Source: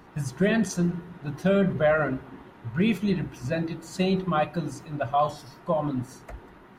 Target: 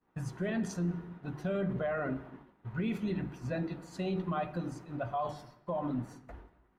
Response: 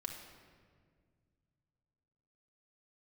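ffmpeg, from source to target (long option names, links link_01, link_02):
-filter_complex "[0:a]agate=range=-33dB:threshold=-39dB:ratio=3:detection=peak,highshelf=frequency=3500:gain=-9,bandreject=frequency=50:width_type=h:width=6,bandreject=frequency=100:width_type=h:width=6,bandreject=frequency=150:width_type=h:width=6,bandreject=frequency=200:width_type=h:width=6,alimiter=limit=-21dB:level=0:latency=1:release=31,asplit=2[link_01][link_02];[1:a]atrim=start_sample=2205,afade=type=out:start_time=0.4:duration=0.01,atrim=end_sample=18081[link_03];[link_02][link_03]afir=irnorm=-1:irlink=0,volume=-10.5dB[link_04];[link_01][link_04]amix=inputs=2:normalize=0,volume=-6.5dB"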